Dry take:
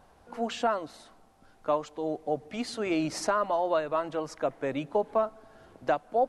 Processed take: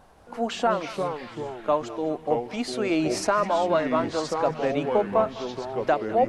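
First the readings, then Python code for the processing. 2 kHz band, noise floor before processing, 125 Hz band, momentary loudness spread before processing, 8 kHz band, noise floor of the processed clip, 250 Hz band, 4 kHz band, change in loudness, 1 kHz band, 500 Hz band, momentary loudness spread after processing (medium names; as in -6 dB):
+5.0 dB, -60 dBFS, +8.0 dB, 8 LU, +4.5 dB, -46 dBFS, +6.0 dB, +5.5 dB, +4.5 dB, +4.5 dB, +5.0 dB, 8 LU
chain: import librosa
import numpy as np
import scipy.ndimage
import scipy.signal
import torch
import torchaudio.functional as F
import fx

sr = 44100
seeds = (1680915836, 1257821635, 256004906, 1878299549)

y = fx.echo_pitch(x, sr, ms=184, semitones=-4, count=3, db_per_echo=-6.0)
y = fx.echo_banded(y, sr, ms=206, feedback_pct=75, hz=2100.0, wet_db=-13)
y = y * 10.0 ** (4.0 / 20.0)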